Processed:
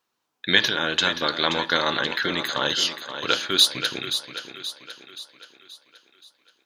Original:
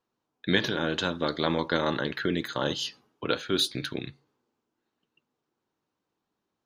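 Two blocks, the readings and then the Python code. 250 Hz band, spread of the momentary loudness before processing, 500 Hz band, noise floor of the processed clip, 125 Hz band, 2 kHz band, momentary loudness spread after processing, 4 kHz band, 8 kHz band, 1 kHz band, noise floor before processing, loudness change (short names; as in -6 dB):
-2.0 dB, 10 LU, +0.5 dB, -78 dBFS, -3.5 dB, +8.5 dB, 20 LU, +10.5 dB, +11.0 dB, +6.0 dB, -84 dBFS, +6.5 dB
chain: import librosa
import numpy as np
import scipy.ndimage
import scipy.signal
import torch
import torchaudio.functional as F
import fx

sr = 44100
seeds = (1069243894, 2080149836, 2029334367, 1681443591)

y = fx.tilt_shelf(x, sr, db=-7.5, hz=750.0)
y = fx.echo_thinned(y, sr, ms=527, feedback_pct=49, hz=170.0, wet_db=-9.5)
y = y * librosa.db_to_amplitude(3.0)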